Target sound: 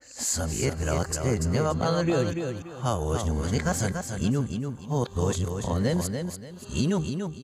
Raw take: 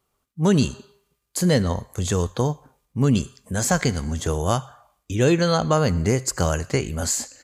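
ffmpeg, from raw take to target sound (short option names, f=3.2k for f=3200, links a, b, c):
-af "areverse,bandreject=f=394.3:t=h:w=4,bandreject=f=788.6:t=h:w=4,bandreject=f=1.1829k:t=h:w=4,bandreject=f=1.5772k:t=h:w=4,bandreject=f=1.9715k:t=h:w=4,bandreject=f=2.3658k:t=h:w=4,bandreject=f=2.7601k:t=h:w=4,bandreject=f=3.1544k:t=h:w=4,bandreject=f=3.5487k:t=h:w=4,bandreject=f=3.943k:t=h:w=4,bandreject=f=4.3373k:t=h:w=4,bandreject=f=4.7316k:t=h:w=4,bandreject=f=5.1259k:t=h:w=4,acompressor=threshold=-20dB:ratio=6,aecho=1:1:288|576|864|1152:0.501|0.14|0.0393|0.011,adynamicequalizer=threshold=0.00631:dfrequency=1800:dqfactor=0.7:tfrequency=1800:tqfactor=0.7:attack=5:release=100:ratio=0.375:range=1.5:mode=cutabove:tftype=highshelf,volume=-1.5dB"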